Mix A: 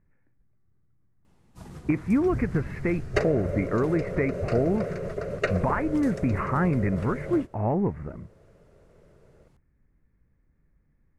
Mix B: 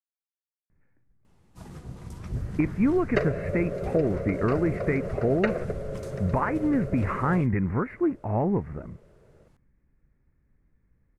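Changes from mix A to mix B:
speech: entry +0.70 s; second sound: add Bessel low-pass 3200 Hz

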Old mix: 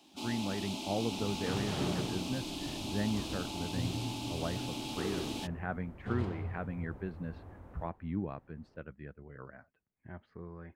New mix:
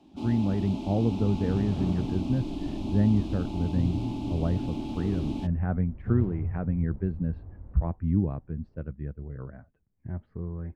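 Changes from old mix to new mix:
second sound -8.5 dB; master: add tilt -4.5 dB/oct

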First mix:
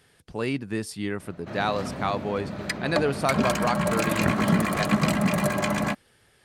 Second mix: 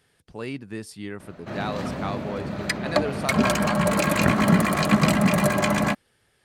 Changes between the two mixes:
speech -5.0 dB; background +3.5 dB

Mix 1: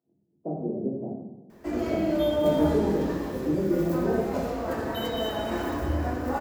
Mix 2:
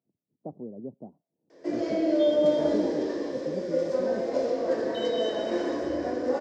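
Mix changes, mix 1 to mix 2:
speech: send off; background: add speaker cabinet 260–6500 Hz, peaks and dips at 350 Hz +4 dB, 520 Hz +9 dB, 850 Hz -8 dB, 1300 Hz -10 dB, 2600 Hz -6 dB, 5200 Hz +6 dB

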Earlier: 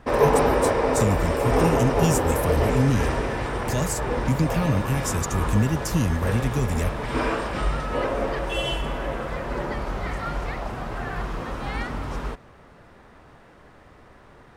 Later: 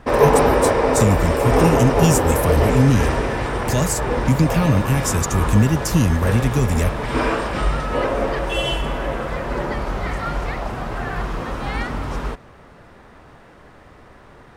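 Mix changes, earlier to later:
speech +6.0 dB; background +4.5 dB

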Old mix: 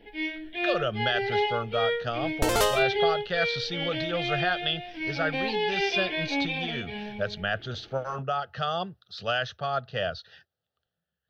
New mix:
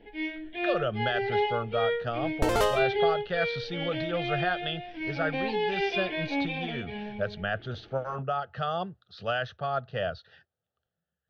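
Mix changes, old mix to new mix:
speech: add air absorption 58 m; master: add high shelf 3100 Hz -10 dB

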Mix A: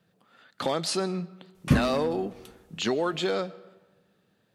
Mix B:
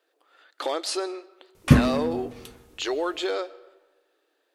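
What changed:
speech: add brick-wall FIR high-pass 280 Hz; background +6.5 dB

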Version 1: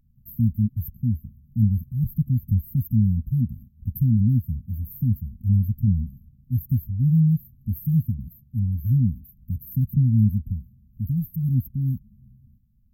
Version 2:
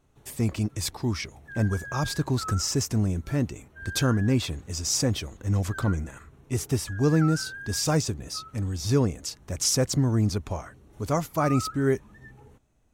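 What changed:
speech -6.0 dB; master: remove brick-wall FIR band-stop 250–12000 Hz

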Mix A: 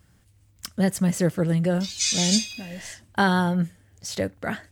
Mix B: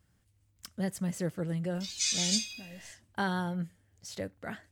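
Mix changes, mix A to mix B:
speech -11.0 dB; background -6.0 dB

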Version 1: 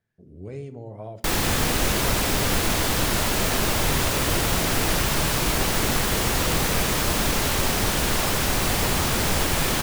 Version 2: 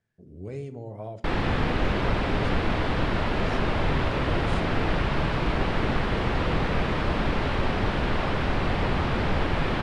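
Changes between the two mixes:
background: add air absorption 390 m; master: add LPF 9600 Hz 24 dB/oct

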